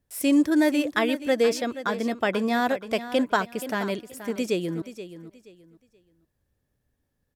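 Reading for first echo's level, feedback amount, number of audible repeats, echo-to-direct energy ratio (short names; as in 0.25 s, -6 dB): -13.0 dB, 26%, 2, -12.5 dB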